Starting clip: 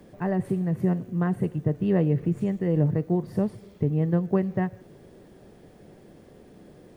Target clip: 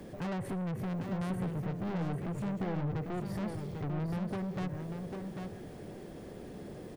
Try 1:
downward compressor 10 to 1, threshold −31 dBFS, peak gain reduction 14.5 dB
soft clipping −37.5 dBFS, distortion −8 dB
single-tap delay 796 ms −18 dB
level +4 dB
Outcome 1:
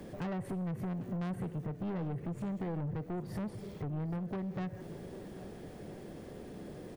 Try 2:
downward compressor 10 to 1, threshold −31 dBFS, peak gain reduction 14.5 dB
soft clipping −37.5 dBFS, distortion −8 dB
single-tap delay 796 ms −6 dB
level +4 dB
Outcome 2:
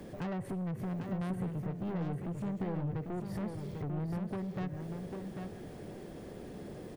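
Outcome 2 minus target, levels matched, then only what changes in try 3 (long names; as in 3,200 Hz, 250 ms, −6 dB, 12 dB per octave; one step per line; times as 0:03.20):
downward compressor: peak gain reduction +6 dB
change: downward compressor 10 to 1, threshold −24.5 dBFS, peak gain reduction 8.5 dB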